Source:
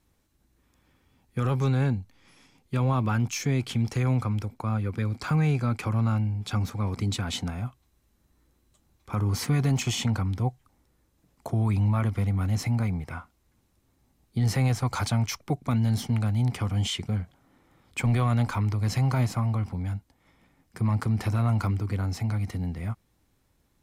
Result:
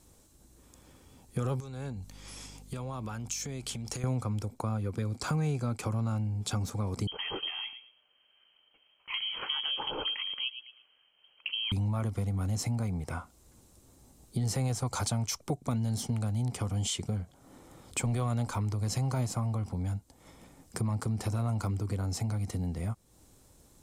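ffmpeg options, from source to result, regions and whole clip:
-filter_complex "[0:a]asettb=1/sr,asplit=3[a][b][c];[a]atrim=end=1.604[d];[b]atrim=start=1.6:end=4.04,asetpts=PTS-STARTPTS,afade=t=in:d=0.004:c=qsin,afade=t=out:st=2.436:d=0.004:c=qsin,tiltshelf=f=740:g=-3,acompressor=threshold=-39dB:ratio=8:attack=3.2:release=140:knee=1:detection=peak,aeval=exprs='val(0)+0.00141*(sin(2*PI*50*n/s)+sin(2*PI*2*50*n/s)/2+sin(2*PI*3*50*n/s)/3+sin(2*PI*4*50*n/s)/4+sin(2*PI*5*50*n/s)/5)':c=same[e];[c]atrim=start=4.036[f];[d][e]acrossfade=d=0.004:c1=hsin:c2=qsin[g];[g][f]acrossfade=d=0.004:c1=qsin:c2=hsin,asettb=1/sr,asplit=3[h][i][j];[h]atrim=end=7.074[k];[i]atrim=start=7.07:end=11.72,asetpts=PTS-STARTPTS,afade=t=in:d=0.004:c=qsin,afade=t=out:st=4.646:d=0.004:c=qsin,highpass=f=200:w=0.5412,highpass=f=200:w=1.3066,asplit=2[l][m];[m]adelay=111,lowpass=f=1.3k:p=1,volume=-12dB,asplit=2[n][o];[o]adelay=111,lowpass=f=1.3k:p=1,volume=0.25,asplit=2[p][q];[q]adelay=111,lowpass=f=1.3k:p=1,volume=0.25[r];[l][n][p][r]amix=inputs=4:normalize=0,atrim=end_sample=205065,lowpass=f=2.9k:t=q:w=0.5098,lowpass=f=2.9k:t=q:w=0.6013,lowpass=f=2.9k:t=q:w=0.9,lowpass=f=2.9k:t=q:w=2.563,afreqshift=-3400[s];[j]atrim=start=11.716[t];[k][s]acrossfade=d=0.004:c1=hsin:c2=qsin[u];[u][t]acrossfade=d=0.004:c1=qsin:c2=hsin,equalizer=f=500:t=o:w=1:g=4,equalizer=f=2k:t=o:w=1:g=-6,equalizer=f=8k:t=o:w=1:g=10,acompressor=threshold=-43dB:ratio=2.5,volume=7.5dB"

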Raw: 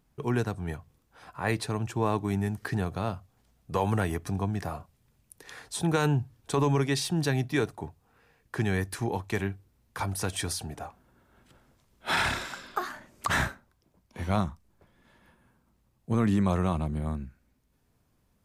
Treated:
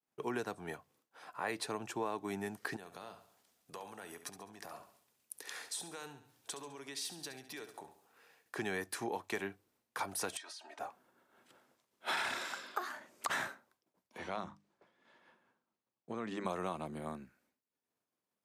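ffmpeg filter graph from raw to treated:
-filter_complex "[0:a]asettb=1/sr,asplit=3[a][b][c];[a]atrim=end=2.764[d];[b]atrim=start=2.76:end=8.56,asetpts=PTS-STARTPTS,afade=t=in:d=0.004:c=qsin,afade=t=out:st=5.796:d=0.004:c=qsin,acompressor=threshold=-41dB:ratio=6:attack=3.2:release=140:knee=1:detection=peak,highshelf=f=2.5k:g=7.5,aecho=1:1:69|138|207|276|345:0.266|0.125|0.0588|0.0276|0.013,atrim=end_sample=255780[e];[c]atrim=start=8.556[f];[d][e]acrossfade=d=0.004:c1=hsin:c2=qsin[g];[g][f]acrossfade=d=0.004:c1=qsin:c2=hsin,asettb=1/sr,asplit=3[h][i][j];[h]atrim=end=10.374[k];[i]atrim=start=10.37:end=10.79,asetpts=PTS-STARTPTS,afade=t=in:d=0.004:c=qsin,afade=t=out:st=0.416:d=0.004:c=qsin,highpass=780,lowpass=5.1k,aecho=1:1:3.2:0.93,atrim=end_sample=18522,acompressor=threshold=-43dB:ratio=12:attack=3.2:release=140:knee=1:detection=peak[l];[j]atrim=start=10.786[m];[k][l]acrossfade=d=0.004:c1=hsin:c2=qsin[n];[n][m]acrossfade=d=0.004:c1=qsin:c2=hsin,asettb=1/sr,asplit=3[o][p][q];[o]atrim=end=14.184[r];[p]atrim=start=14.18:end=16.45,asetpts=PTS-STARTPTS,afade=t=in:d=0.004:c=qsin,afade=t=out:st=2.266:d=0.004:c=qsin,lowpass=5.9k,bandreject=f=50:t=h:w=6,bandreject=f=100:t=h:w=6,bandreject=f=150:t=h:w=6,bandreject=f=200:t=h:w=6,bandreject=f=250:t=h:w=6,bandreject=f=300:t=h:w=6,acompressor=threshold=-28dB:ratio=4:attack=3.2:release=140:knee=1:detection=peak[s];[q]atrim=start=16.446[t];[r][s]acrossfade=d=0.004:c1=hsin:c2=qsin[u];[u][t]acrossfade=d=0.004:c1=qsin:c2=hsin,agate=range=-33dB:threshold=-60dB:ratio=3:detection=peak,highpass=330,acompressor=threshold=-31dB:ratio=4,volume=-2.5dB"

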